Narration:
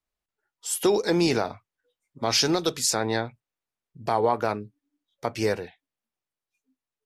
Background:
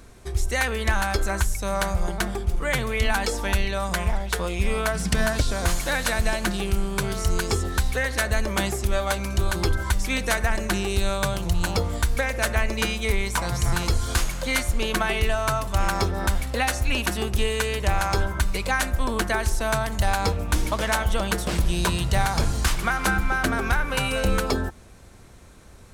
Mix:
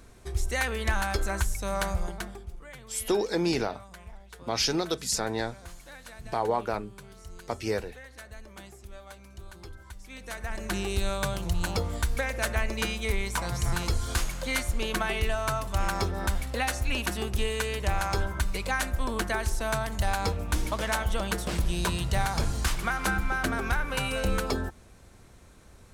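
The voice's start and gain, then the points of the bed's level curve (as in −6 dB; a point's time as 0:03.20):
2.25 s, −4.5 dB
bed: 0:01.94 −4.5 dB
0:02.73 −22 dB
0:10.01 −22 dB
0:10.79 −5 dB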